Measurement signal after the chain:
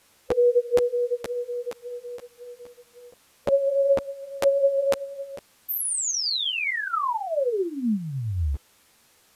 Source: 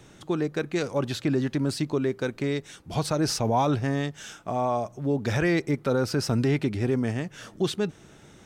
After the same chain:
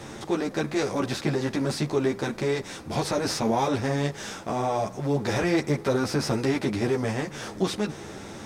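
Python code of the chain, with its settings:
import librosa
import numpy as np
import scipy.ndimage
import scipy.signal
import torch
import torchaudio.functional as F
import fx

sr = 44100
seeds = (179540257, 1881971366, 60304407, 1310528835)

y = fx.bin_compress(x, sr, power=0.6)
y = fx.ensemble(y, sr)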